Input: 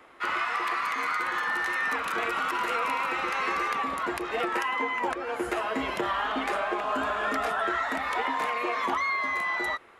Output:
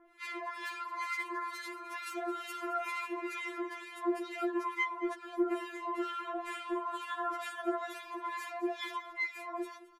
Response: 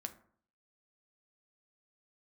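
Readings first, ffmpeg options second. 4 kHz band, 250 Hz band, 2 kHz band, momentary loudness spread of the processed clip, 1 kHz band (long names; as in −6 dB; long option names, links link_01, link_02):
−10.0 dB, −1.5 dB, −11.5 dB, 7 LU, −10.5 dB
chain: -filter_complex "[0:a]bass=frequency=250:gain=6,treble=frequency=4000:gain=3,acrossover=split=1400[link_01][link_02];[link_01]aeval=exprs='val(0)*(1-1/2+1/2*cos(2*PI*2.2*n/s))':channel_layout=same[link_03];[link_02]aeval=exprs='val(0)*(1-1/2-1/2*cos(2*PI*2.2*n/s))':channel_layout=same[link_04];[link_03][link_04]amix=inputs=2:normalize=0,asplit=2[link_05][link_06];[link_06]aecho=0:1:218:0.141[link_07];[link_05][link_07]amix=inputs=2:normalize=0,afftfilt=real='re*4*eq(mod(b,16),0)':imag='im*4*eq(mod(b,16),0)':win_size=2048:overlap=0.75,volume=-3.5dB"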